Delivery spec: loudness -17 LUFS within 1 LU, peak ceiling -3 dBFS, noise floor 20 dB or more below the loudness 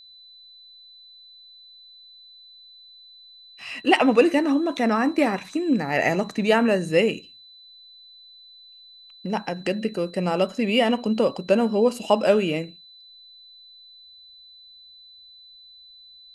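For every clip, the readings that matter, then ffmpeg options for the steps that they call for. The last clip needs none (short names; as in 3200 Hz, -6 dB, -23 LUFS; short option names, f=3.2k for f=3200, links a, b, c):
steady tone 4000 Hz; tone level -46 dBFS; loudness -22.0 LUFS; peak -3.0 dBFS; loudness target -17.0 LUFS
-> -af "bandreject=f=4k:w=30"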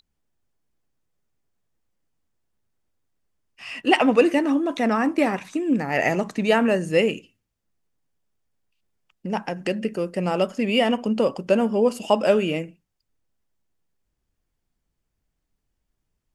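steady tone none; loudness -22.0 LUFS; peak -3.0 dBFS; loudness target -17.0 LUFS
-> -af "volume=5dB,alimiter=limit=-3dB:level=0:latency=1"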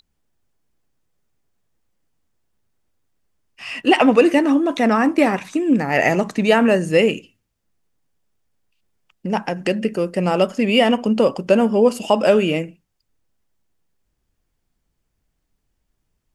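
loudness -17.5 LUFS; peak -3.0 dBFS; noise floor -74 dBFS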